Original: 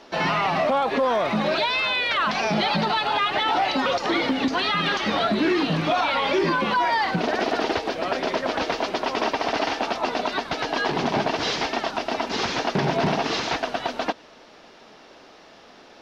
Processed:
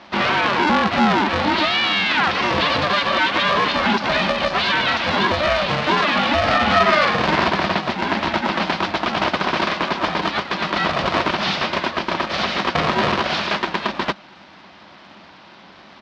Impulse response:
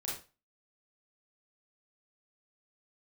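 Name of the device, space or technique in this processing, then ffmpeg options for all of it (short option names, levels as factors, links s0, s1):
ring modulator pedal into a guitar cabinet: -filter_complex "[0:a]asplit=3[s0][s1][s2];[s0]afade=t=out:st=6.47:d=0.02[s3];[s1]asplit=2[s4][s5];[s5]adelay=47,volume=0.75[s6];[s4][s6]amix=inputs=2:normalize=0,afade=t=in:st=6.47:d=0.02,afade=t=out:st=7.48:d=0.02[s7];[s2]afade=t=in:st=7.48:d=0.02[s8];[s3][s7][s8]amix=inputs=3:normalize=0,aeval=exprs='val(0)*sgn(sin(2*PI*300*n/s))':c=same,highpass=110,equalizer=f=120:t=q:w=4:g=-10,equalizer=f=200:t=q:w=4:g=8,equalizer=f=460:t=q:w=4:g=-8,lowpass=f=4600:w=0.5412,lowpass=f=4600:w=1.3066,volume=1.78"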